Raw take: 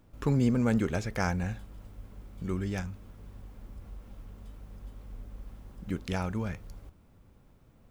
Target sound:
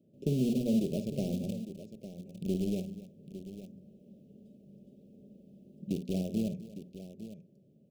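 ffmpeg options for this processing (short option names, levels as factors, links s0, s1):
-filter_complex "[0:a]highpass=f=140:w=0.5412,highpass=f=140:w=1.3066,tiltshelf=f=970:g=9.5,bandreject=f=60:t=h:w=6,bandreject=f=120:t=h:w=6,bandreject=f=180:t=h:w=6,bandreject=f=240:t=h:w=6,aecho=1:1:5.1:0.39,acompressor=threshold=0.0794:ratio=4,asplit=2[s0][s1];[s1]acrusher=bits=3:mix=0:aa=0.000001,volume=0.398[s2];[s0][s2]amix=inputs=2:normalize=0,asuperstop=centerf=1300:order=12:qfactor=0.67,aecho=1:1:54|257|855:0.316|0.158|0.237,volume=0.398"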